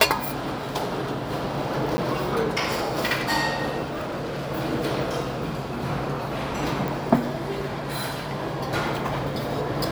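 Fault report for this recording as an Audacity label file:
1.970000	1.980000	drop-out 10 ms
3.830000	4.480000	clipping −26.5 dBFS
6.880000	6.880000	click

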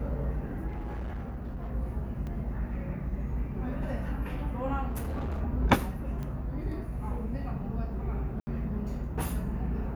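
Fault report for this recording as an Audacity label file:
0.670000	1.730000	clipping −32.5 dBFS
2.270000	2.270000	drop-out 2.8 ms
4.880000	5.420000	clipping −30 dBFS
6.230000	6.230000	click −26 dBFS
8.400000	8.470000	drop-out 70 ms

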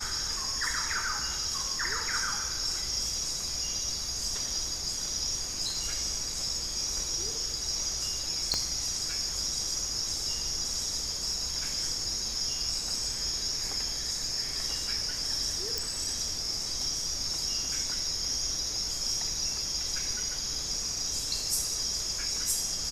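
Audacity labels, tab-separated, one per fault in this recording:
8.540000	8.540000	click −14 dBFS
15.780000	15.780000	click

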